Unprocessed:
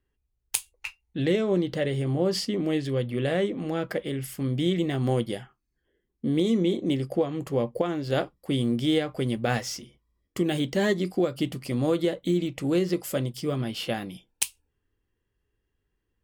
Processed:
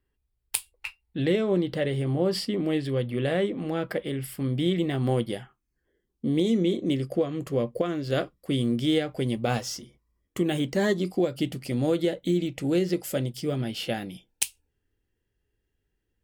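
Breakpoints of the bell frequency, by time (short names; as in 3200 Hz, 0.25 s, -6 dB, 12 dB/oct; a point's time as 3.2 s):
bell -12.5 dB 0.23 oct
5.38 s 6400 Hz
6.7 s 860 Hz
8.9 s 860 Hz
10.46 s 5500 Hz
11.33 s 1100 Hz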